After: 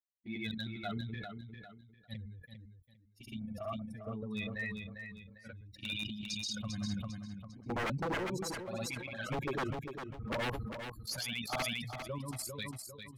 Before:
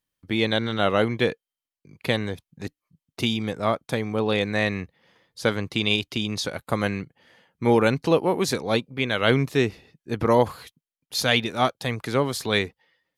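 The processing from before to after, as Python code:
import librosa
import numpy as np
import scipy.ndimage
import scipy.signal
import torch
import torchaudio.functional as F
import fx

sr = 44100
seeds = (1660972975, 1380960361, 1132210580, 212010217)

p1 = fx.bin_expand(x, sr, power=3.0)
p2 = fx.high_shelf(p1, sr, hz=5100.0, db=5.5)
p3 = fx.hpss(p2, sr, part='percussive', gain_db=-4)
p4 = fx.low_shelf(p3, sr, hz=170.0, db=3.0)
p5 = fx.level_steps(p4, sr, step_db=13)
p6 = fx.env_flanger(p5, sr, rest_ms=4.2, full_db=-31.0)
p7 = fx.granulator(p6, sr, seeds[0], grain_ms=185.0, per_s=14.0, spray_ms=100.0, spread_st=0)
p8 = 10.0 ** (-35.5 / 20.0) * (np.abs((p7 / 10.0 ** (-35.5 / 20.0) + 3.0) % 4.0 - 2.0) - 1.0)
p9 = p8 + fx.echo_feedback(p8, sr, ms=400, feedback_pct=19, wet_db=-8, dry=0)
p10 = fx.sustainer(p9, sr, db_per_s=34.0)
y = p10 * 10.0 ** (6.0 / 20.0)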